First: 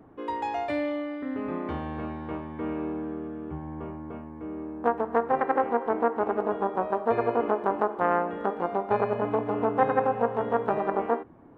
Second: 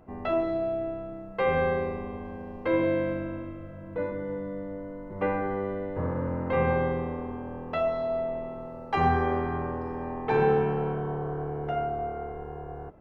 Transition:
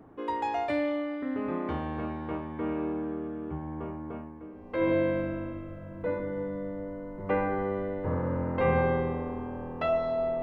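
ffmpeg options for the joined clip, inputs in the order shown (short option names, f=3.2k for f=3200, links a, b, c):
-filter_complex "[0:a]apad=whole_dur=10.42,atrim=end=10.42,atrim=end=4.91,asetpts=PTS-STARTPTS[a];[1:a]atrim=start=2.13:end=8.34,asetpts=PTS-STARTPTS[b];[a][b]acrossfade=d=0.7:c1=qua:c2=qua"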